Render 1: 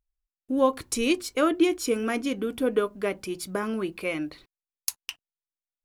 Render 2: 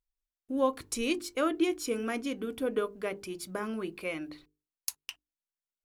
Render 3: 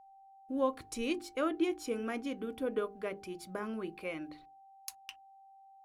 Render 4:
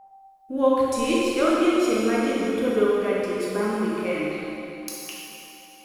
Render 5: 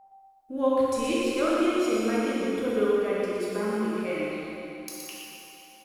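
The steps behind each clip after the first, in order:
notches 50/100/150/200/250/300/350/400/450 Hz; gain -5.5 dB
high shelf 3900 Hz -7 dB; whine 780 Hz -52 dBFS; gain -3.5 dB
reverb RT60 3.0 s, pre-delay 6 ms, DRR -6.5 dB; gain +6.5 dB
echo 0.119 s -5.5 dB; gain -5 dB

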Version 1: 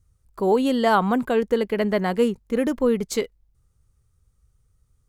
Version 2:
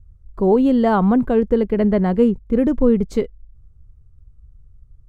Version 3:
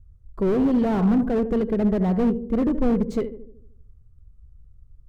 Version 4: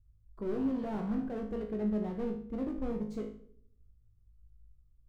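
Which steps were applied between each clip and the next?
tilt -4 dB/oct; gain -1 dB
darkening echo 76 ms, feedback 57%, low-pass 910 Hz, level -11 dB; slew limiter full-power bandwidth 64 Hz; gain -3.5 dB
resonator 53 Hz, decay 0.48 s, harmonics all, mix 90%; gain -5.5 dB

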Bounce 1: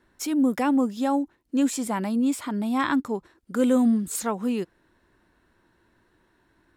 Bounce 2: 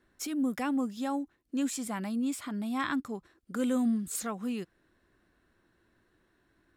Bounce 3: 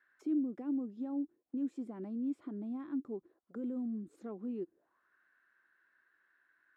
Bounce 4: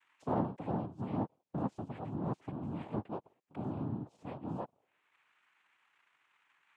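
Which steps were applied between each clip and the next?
notch 920 Hz, Q 6.9; dynamic EQ 440 Hz, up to -6 dB, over -36 dBFS, Q 0.89; gain -5 dB
limiter -27.5 dBFS, peak gain reduction 8.5 dB; auto-wah 340–1700 Hz, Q 4.3, down, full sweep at -38.5 dBFS; gain +5.5 dB
noise vocoder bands 4

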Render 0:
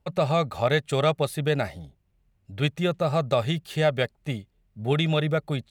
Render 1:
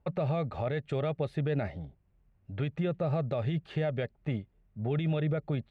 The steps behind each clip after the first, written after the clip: dynamic EQ 1100 Hz, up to -8 dB, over -39 dBFS, Q 1.1; limiter -22 dBFS, peak gain reduction 10 dB; LPF 2000 Hz 12 dB/oct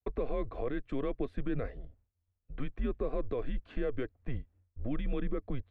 expander -56 dBFS; high shelf 3000 Hz -12 dB; frequency shift -130 Hz; gain -1.5 dB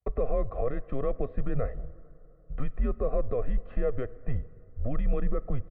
LPF 1500 Hz 12 dB/oct; comb 1.6 ms, depth 62%; reverb RT60 3.2 s, pre-delay 18 ms, DRR 19 dB; gain +4 dB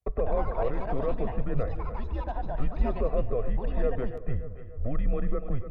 split-band echo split 310 Hz, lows 0.157 s, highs 0.29 s, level -11 dB; echoes that change speed 0.145 s, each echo +6 st, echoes 2, each echo -6 dB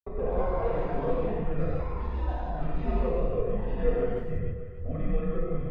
gate with hold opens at -31 dBFS; non-linear reverb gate 0.22 s flat, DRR -8 dB; gain -8 dB

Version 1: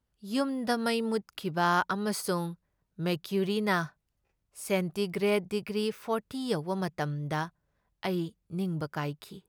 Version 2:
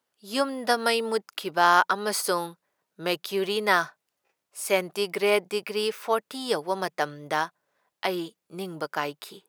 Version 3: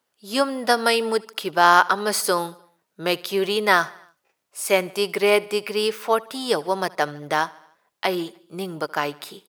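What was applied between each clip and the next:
HPF 440 Hz 12 dB/oct; gain +7.5 dB
feedback echo 75 ms, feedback 58%, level -23 dB; gain +4.5 dB

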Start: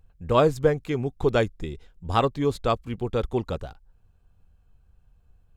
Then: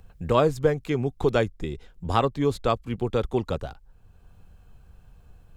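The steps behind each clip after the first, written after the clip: three-band squash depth 40%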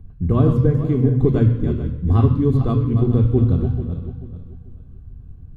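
regenerating reverse delay 0.219 s, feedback 52%, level -8 dB; reverb RT60 1.0 s, pre-delay 3 ms, DRR 7 dB; gain -8 dB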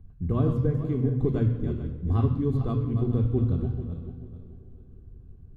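tape echo 0.179 s, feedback 88%, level -19.5 dB, low-pass 1300 Hz; gain -8.5 dB

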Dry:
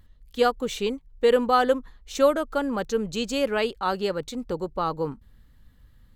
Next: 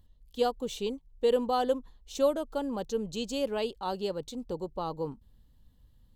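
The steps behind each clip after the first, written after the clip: band shelf 1700 Hz -9.5 dB 1.2 oct; gain -6 dB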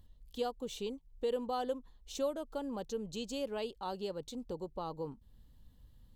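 compressor 1.5:1, threshold -50 dBFS, peak gain reduction 10.5 dB; gain +1 dB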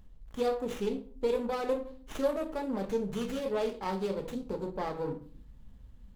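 shoebox room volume 380 m³, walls furnished, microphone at 1.5 m; running maximum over 9 samples; gain +4 dB

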